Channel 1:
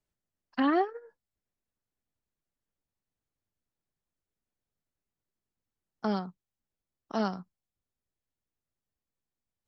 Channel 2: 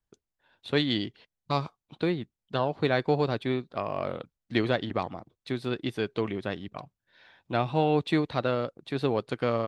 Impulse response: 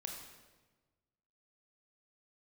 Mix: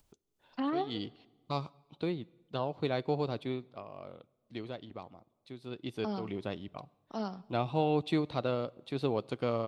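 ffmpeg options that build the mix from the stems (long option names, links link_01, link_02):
-filter_complex "[0:a]volume=-7.5dB,asplit=3[link_01][link_02][link_03];[link_02]volume=-14dB[link_04];[1:a]volume=3.5dB,afade=type=out:start_time=3.45:duration=0.41:silence=0.375837,afade=type=in:start_time=5.6:duration=0.51:silence=0.298538,asplit=2[link_05][link_06];[link_06]volume=-18.5dB[link_07];[link_03]apad=whole_len=426468[link_08];[link_05][link_08]sidechaincompress=threshold=-46dB:ratio=8:attack=16:release=129[link_09];[2:a]atrim=start_sample=2205[link_10];[link_04][link_07]amix=inputs=2:normalize=0[link_11];[link_11][link_10]afir=irnorm=-1:irlink=0[link_12];[link_01][link_09][link_12]amix=inputs=3:normalize=0,equalizer=frequency=1700:width_type=o:width=0.51:gain=-9,acompressor=mode=upward:threshold=-56dB:ratio=2.5"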